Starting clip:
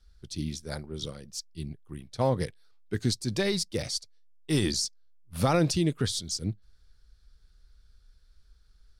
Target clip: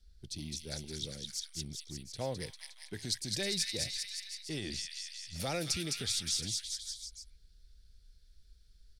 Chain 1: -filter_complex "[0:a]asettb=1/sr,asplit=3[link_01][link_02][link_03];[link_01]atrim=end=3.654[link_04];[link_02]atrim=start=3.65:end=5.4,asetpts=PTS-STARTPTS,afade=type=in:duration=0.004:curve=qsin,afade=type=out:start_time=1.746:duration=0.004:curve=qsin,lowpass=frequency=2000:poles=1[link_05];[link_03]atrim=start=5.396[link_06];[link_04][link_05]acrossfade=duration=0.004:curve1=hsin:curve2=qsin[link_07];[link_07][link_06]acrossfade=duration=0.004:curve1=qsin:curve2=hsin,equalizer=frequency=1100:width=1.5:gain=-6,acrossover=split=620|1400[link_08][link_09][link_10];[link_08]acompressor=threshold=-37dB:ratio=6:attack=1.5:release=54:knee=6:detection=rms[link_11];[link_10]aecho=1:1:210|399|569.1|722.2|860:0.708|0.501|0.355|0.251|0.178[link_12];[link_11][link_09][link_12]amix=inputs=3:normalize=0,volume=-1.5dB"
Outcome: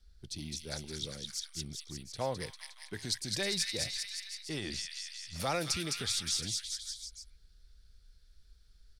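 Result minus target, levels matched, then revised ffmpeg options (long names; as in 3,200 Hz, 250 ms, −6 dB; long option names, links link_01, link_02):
1,000 Hz band +5.5 dB
-filter_complex "[0:a]asettb=1/sr,asplit=3[link_01][link_02][link_03];[link_01]atrim=end=3.654[link_04];[link_02]atrim=start=3.65:end=5.4,asetpts=PTS-STARTPTS,afade=type=in:duration=0.004:curve=qsin,afade=type=out:start_time=1.746:duration=0.004:curve=qsin,lowpass=frequency=2000:poles=1[link_05];[link_03]atrim=start=5.396[link_06];[link_04][link_05]acrossfade=duration=0.004:curve1=hsin:curve2=qsin[link_07];[link_07][link_06]acrossfade=duration=0.004:curve1=qsin:curve2=hsin,equalizer=frequency=1100:width=1.5:gain=-16.5,acrossover=split=620|1400[link_08][link_09][link_10];[link_08]acompressor=threshold=-37dB:ratio=6:attack=1.5:release=54:knee=6:detection=rms[link_11];[link_10]aecho=1:1:210|399|569.1|722.2|860:0.708|0.501|0.355|0.251|0.178[link_12];[link_11][link_09][link_12]amix=inputs=3:normalize=0,volume=-1.5dB"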